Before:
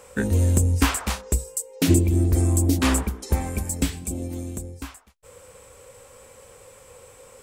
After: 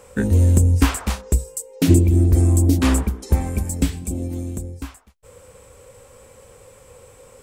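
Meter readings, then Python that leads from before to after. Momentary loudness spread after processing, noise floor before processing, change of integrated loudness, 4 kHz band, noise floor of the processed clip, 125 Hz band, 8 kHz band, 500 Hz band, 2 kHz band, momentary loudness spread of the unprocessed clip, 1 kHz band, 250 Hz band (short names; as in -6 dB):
15 LU, -50 dBFS, +4.0 dB, -1.0 dB, -49 dBFS, +5.0 dB, -1.0 dB, +2.5 dB, -0.5 dB, 13 LU, 0.0 dB, +3.5 dB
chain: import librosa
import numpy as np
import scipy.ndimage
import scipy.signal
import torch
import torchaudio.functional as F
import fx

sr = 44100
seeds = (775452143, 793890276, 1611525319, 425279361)

y = fx.low_shelf(x, sr, hz=430.0, db=6.5)
y = y * 10.0 ** (-1.0 / 20.0)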